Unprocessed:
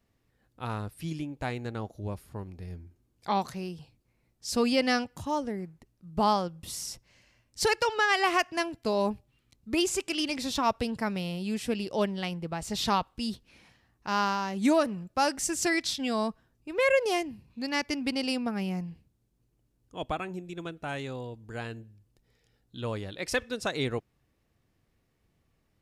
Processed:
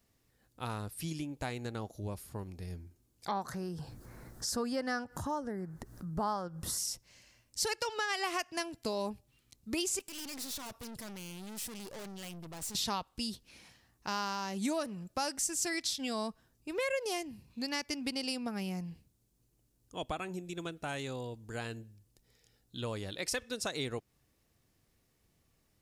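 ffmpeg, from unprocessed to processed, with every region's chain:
-filter_complex "[0:a]asettb=1/sr,asplit=3[a][b][c];[a]atrim=end=3.314[d];[b]atrim=start=3.31:end=6.78,asetpts=PTS-STARTPTS,afade=t=in:d=0.004:c=qsin,afade=t=out:st=3.466:d=0.004:c=qsin,highshelf=f=2k:t=q:w=3:g=-7.5,acompressor=mode=upward:threshold=-29dB:ratio=2.5:attack=3.2:release=140:knee=2.83:detection=peak[e];[c]atrim=start=6.776[f];[d][e]acrossfade=d=0.004:c1=hsin:c2=qsin[g];[g][f]acrossfade=d=0.004:c1=qsin:c2=hsin,asettb=1/sr,asplit=3[h][i][j];[h]atrim=end=9.994[k];[i]atrim=start=9.99:end=12.75,asetpts=PTS-STARTPTS,afade=t=in:d=0.004:c=qsin,afade=t=out:st=2.756:d=0.004:c=qsin,equalizer=f=13k:t=o:w=0.83:g=9,aeval=exprs='(tanh(141*val(0)+0.55)-tanh(0.55))/141':c=same[l];[j]atrim=start=12.746[m];[k][l]acrossfade=d=0.004:c1=hsin:c2=qsin[n];[n][m]acrossfade=d=0.004:c1=qsin:c2=hsin,bass=f=250:g=-1,treble=f=4k:g=9,acompressor=threshold=-34dB:ratio=2.5,volume=-1dB"

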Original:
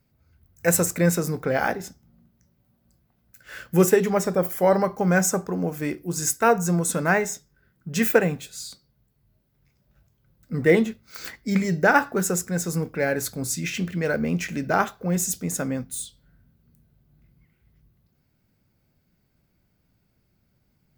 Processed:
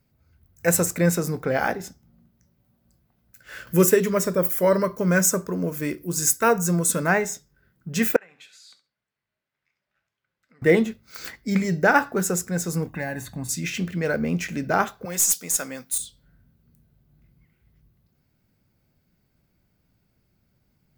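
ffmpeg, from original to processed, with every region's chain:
-filter_complex "[0:a]asettb=1/sr,asplit=3[a][b][c];[a]atrim=end=3.674[d];[b]atrim=start=3.67:end=7.07,asetpts=PTS-STARTPTS,afade=t=in:d=0.004:c=qsin,afade=t=out:st=3.396:d=0.004:c=qsin,highshelf=f=7.6k:g=7.5,acompressor=mode=upward:threshold=-37dB:ratio=2.5:attack=3.2:release=140:knee=2.83:detection=peak,asuperstop=centerf=780:order=4:qfactor=4.3[e];[c]atrim=start=7.066[f];[d][e]acrossfade=d=0.004:c1=hsin:c2=qsin[g];[g][f]acrossfade=d=0.004:c1=qsin:c2=hsin,asettb=1/sr,asplit=3[h][i][j];[h]atrim=end=8.164[k];[i]atrim=start=8.16:end=10.62,asetpts=PTS-STARTPTS,afade=t=in:d=0.004:c=qsin,afade=t=out:st=2.456:d=0.004:c=qsin,acompressor=threshold=-35dB:ratio=10:attack=3.2:release=140:knee=1:detection=peak,bandpass=f=2k:t=q:w=1.2,aecho=1:1:68|136:0.211|0.0359,atrim=end_sample=108486[l];[j]atrim=start=10.616[m];[k][l]acrossfade=d=0.004:c1=hsin:c2=qsin[n];[n][m]acrossfade=d=0.004:c1=qsin:c2=hsin,asettb=1/sr,asplit=3[o][p][q];[o]atrim=end=12.874[r];[p]atrim=start=12.87:end=13.49,asetpts=PTS-STARTPTS,afade=t=in:d=0.004:c=qsin,afade=t=out:st=0.616:d=0.004:c=qsin,equalizer=f=5.1k:t=o:w=0.2:g=-12.5,aecho=1:1:1.1:0.73,atrim=end_sample=27342,acrossover=split=880|3800[s][t][u];[s]acompressor=threshold=-29dB:ratio=4[v];[t]acompressor=threshold=-34dB:ratio=4[w];[u]acompressor=threshold=-44dB:ratio=4[x];[v][w][x]amix=inputs=3:normalize=0[y];[q]atrim=start=13.486[z];[r][y]acrossfade=d=0.004:c1=hsin:c2=qsin[aa];[aa][z]acrossfade=d=0.004:c1=qsin:c2=hsin,asettb=1/sr,asplit=3[ab][ac][ad];[ab]atrim=end=15.054[ae];[ac]atrim=start=15.05:end=15.98,asetpts=PTS-STARTPTS,afade=t=in:d=0.004:c=qsin,afade=t=out:st=0.926:d=0.004:c=qsin,highpass=f=760:p=1,highshelf=f=2.7k:g=9.5,aeval=exprs='(tanh(3.55*val(0)+0.15)-tanh(0.15))/3.55':c=same[af];[ad]atrim=start=15.976[ag];[ae][af]acrossfade=d=0.004:c1=hsin:c2=qsin[ah];[ah][ag]acrossfade=d=0.004:c1=qsin:c2=hsin"

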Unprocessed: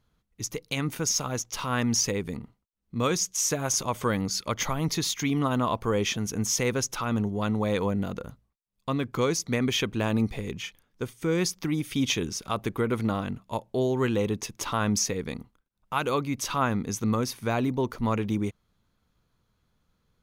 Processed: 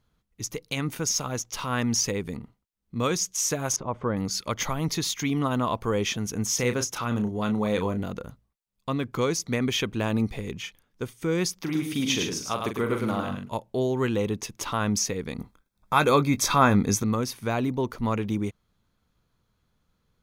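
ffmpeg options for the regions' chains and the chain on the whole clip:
-filter_complex "[0:a]asettb=1/sr,asplit=3[a][b][c];[a]atrim=end=3.764[d];[b]atrim=start=3.76:end=4.17,asetpts=PTS-STARTPTS,afade=t=in:d=0.004:c=qsin,afade=t=out:st=0.406:d=0.004:c=qsin,lowpass=1.1k,aemphasis=mode=production:type=cd[e];[c]atrim=start=4.166[f];[d][e]acrossfade=d=0.004:c1=hsin:c2=qsin[g];[g][f]acrossfade=d=0.004:c1=qsin:c2=hsin,asettb=1/sr,asplit=3[h][i][j];[h]atrim=end=6.554[k];[i]atrim=start=6.55:end=8.04,asetpts=PTS-STARTPTS,afade=t=in:d=0.004:c=qsin,afade=t=out:st=1.486:d=0.004:c=qsin,highpass=41,asplit=2[l][m];[m]adelay=33,volume=-8.5dB[n];[l][n]amix=inputs=2:normalize=0,atrim=end_sample=65709[o];[j]atrim=start=8.036[p];[k][o]acrossfade=d=0.004:c1=hsin:c2=qsin[q];[q][p]acrossfade=d=0.004:c1=qsin:c2=hsin,asettb=1/sr,asplit=3[r][s][t];[r]atrim=end=11.624[u];[s]atrim=start=11.62:end=13.5,asetpts=PTS-STARTPTS,afade=t=in:d=0.004:c=qsin,afade=t=out:st=1.876:d=0.004:c=qsin,highpass=f=150:p=1,asplit=2[v][w];[w]adelay=42,volume=-7dB[x];[v][x]amix=inputs=2:normalize=0,atrim=end_sample=82908,aecho=1:1:105:0.596,atrim=end_sample=82908[y];[t]atrim=start=13.496[z];[u][y]acrossfade=d=0.004:c1=hsin:c2=qsin[aa];[aa][z]acrossfade=d=0.004:c1=qsin:c2=hsin,asettb=1/sr,asplit=3[ab][ac][ad];[ab]atrim=end=15.384[ae];[ac]atrim=start=15.38:end=17.03,asetpts=PTS-STARTPTS,afade=t=in:d=0.004:c=qsin,afade=t=out:st=1.646:d=0.004:c=qsin,asplit=2[af][ag];[ag]adelay=20,volume=-13dB[ah];[af][ah]amix=inputs=2:normalize=0,atrim=end_sample=72765,acontrast=74,asuperstop=centerf=2900:order=20:qfactor=7.6[ai];[ad]atrim=start=17.026[aj];[ae][ai]acrossfade=d=0.004:c1=hsin:c2=qsin[ak];[ak][aj]acrossfade=d=0.004:c1=qsin:c2=hsin"

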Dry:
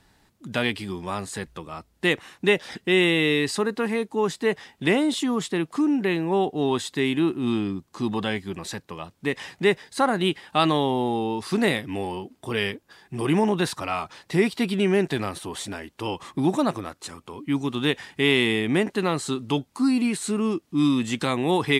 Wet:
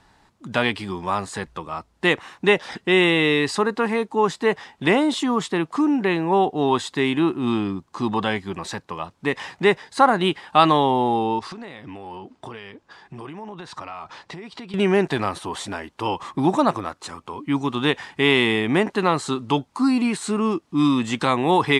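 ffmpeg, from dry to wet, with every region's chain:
-filter_complex "[0:a]asettb=1/sr,asplit=3[a][b][c];[a]atrim=end=11.394[d];[b]atrim=start=11.39:end=14.74,asetpts=PTS-STARTPTS,afade=t=in:d=0.004:c=qsin,afade=t=out:st=3.346:d=0.004:c=qsin,lowpass=7.2k,acompressor=threshold=-35dB:ratio=20:attack=3.2:release=140:knee=1:detection=peak[e];[c]atrim=start=14.736[f];[d][e]acrossfade=d=0.004:c1=hsin:c2=qsin[g];[g][f]acrossfade=d=0.004:c1=qsin:c2=hsin,lowpass=8.6k,equalizer=f=990:w=1.2:g=7.5,volume=1.5dB"

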